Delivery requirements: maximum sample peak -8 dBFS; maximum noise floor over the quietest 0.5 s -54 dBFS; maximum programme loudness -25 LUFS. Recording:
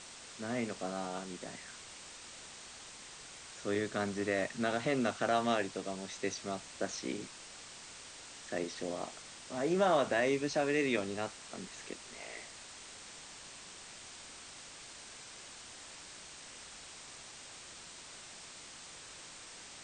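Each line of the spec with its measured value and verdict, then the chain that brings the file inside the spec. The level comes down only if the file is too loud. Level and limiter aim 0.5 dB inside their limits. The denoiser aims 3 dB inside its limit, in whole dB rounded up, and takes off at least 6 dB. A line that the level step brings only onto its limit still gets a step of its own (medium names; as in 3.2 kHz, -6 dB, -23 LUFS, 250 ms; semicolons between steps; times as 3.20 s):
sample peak -19.0 dBFS: pass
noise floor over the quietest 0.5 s -51 dBFS: fail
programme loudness -38.5 LUFS: pass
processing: noise reduction 6 dB, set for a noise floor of -51 dBFS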